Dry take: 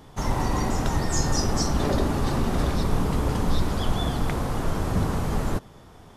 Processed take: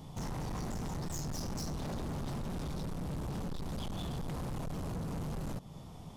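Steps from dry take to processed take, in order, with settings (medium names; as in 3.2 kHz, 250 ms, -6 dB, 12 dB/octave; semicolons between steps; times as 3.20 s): fifteen-band graphic EQ 160 Hz +8 dB, 400 Hz -5 dB, 1.6 kHz -12 dB; compression 2.5:1, threshold -29 dBFS, peak gain reduction 10 dB; overload inside the chain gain 34.5 dB; trim -1.5 dB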